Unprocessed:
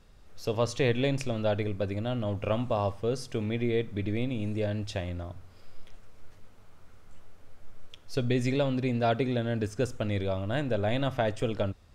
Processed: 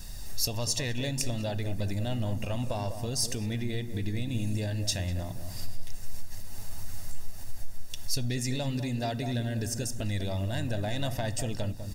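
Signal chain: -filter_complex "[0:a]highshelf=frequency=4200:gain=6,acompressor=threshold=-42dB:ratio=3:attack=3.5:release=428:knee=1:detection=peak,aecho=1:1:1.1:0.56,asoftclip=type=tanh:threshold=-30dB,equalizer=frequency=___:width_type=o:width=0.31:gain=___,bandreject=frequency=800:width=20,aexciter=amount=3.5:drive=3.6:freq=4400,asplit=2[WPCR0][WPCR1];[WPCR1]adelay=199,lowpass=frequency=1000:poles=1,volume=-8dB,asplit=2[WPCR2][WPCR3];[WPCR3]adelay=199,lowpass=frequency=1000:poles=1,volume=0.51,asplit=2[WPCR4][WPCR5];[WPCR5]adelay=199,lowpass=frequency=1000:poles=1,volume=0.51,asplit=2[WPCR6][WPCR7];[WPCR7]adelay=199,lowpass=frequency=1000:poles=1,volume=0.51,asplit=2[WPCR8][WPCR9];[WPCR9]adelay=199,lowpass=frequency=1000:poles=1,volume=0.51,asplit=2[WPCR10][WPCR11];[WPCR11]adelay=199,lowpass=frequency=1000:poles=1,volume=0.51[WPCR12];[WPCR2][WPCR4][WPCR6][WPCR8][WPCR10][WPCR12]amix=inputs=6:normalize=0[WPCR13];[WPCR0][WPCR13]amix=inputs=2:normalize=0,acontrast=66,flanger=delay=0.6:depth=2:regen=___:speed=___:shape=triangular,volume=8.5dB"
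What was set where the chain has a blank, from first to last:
1100, -9, 77, 1.6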